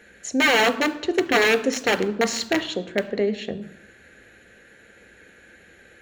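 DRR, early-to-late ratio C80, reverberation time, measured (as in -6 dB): 9.5 dB, 17.5 dB, 0.85 s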